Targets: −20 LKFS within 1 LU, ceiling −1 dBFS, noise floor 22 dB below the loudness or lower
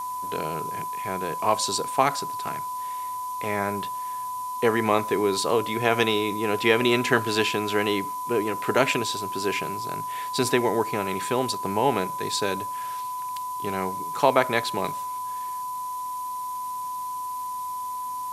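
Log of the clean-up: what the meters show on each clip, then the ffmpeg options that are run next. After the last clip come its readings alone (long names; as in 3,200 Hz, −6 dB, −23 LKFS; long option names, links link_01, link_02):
interfering tone 1,000 Hz; level of the tone −29 dBFS; background noise floor −32 dBFS; target noise floor −48 dBFS; integrated loudness −26.0 LKFS; sample peak −3.0 dBFS; target loudness −20.0 LKFS
→ -af "bandreject=frequency=1000:width=30"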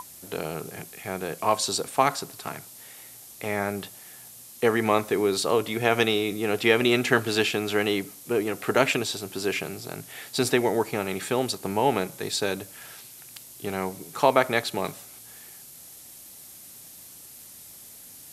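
interfering tone none found; background noise floor −46 dBFS; target noise floor −48 dBFS
→ -af "afftdn=noise_reduction=6:noise_floor=-46"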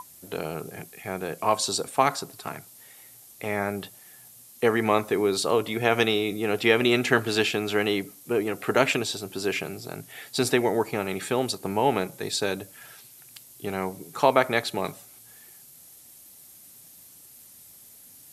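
background noise floor −51 dBFS; integrated loudness −25.5 LKFS; sample peak −3.5 dBFS; target loudness −20.0 LKFS
→ -af "volume=5.5dB,alimiter=limit=-1dB:level=0:latency=1"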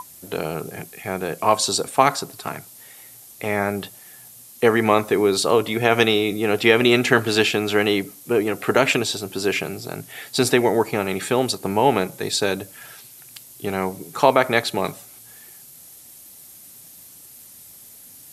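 integrated loudness −20.5 LKFS; sample peak −1.0 dBFS; background noise floor −45 dBFS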